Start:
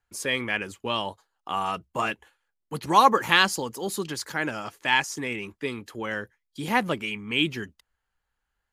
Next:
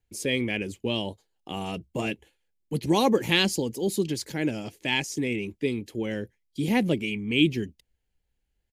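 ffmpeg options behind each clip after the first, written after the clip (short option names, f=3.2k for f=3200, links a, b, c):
-af "firequalizer=gain_entry='entry(340,0);entry(1200,-24);entry(2200,-7)':delay=0.05:min_phase=1,volume=6dB"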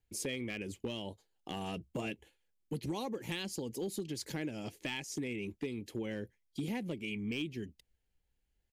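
-af "acompressor=threshold=-31dB:ratio=12,volume=26.5dB,asoftclip=hard,volume=-26.5dB,volume=-3dB"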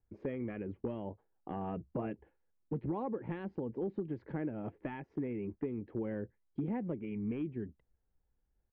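-af "lowpass=f=1.5k:w=0.5412,lowpass=f=1.5k:w=1.3066,volume=1.5dB"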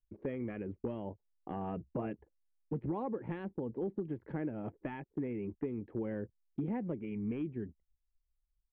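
-af "anlmdn=0.0000251"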